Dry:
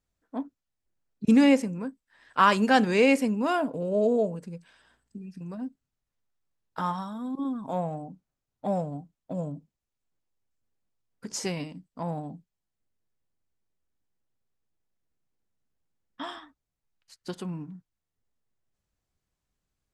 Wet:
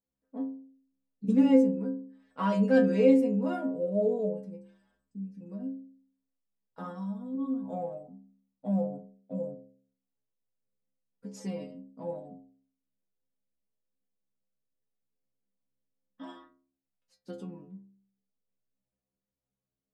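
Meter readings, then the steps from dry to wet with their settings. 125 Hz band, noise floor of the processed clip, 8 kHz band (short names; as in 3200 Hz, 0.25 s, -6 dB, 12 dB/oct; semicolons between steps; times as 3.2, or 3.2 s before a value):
-2.0 dB, under -85 dBFS, under -15 dB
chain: metallic resonator 63 Hz, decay 0.71 s, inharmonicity 0.008; small resonant body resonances 220/480 Hz, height 17 dB, ringing for 25 ms; gain -5 dB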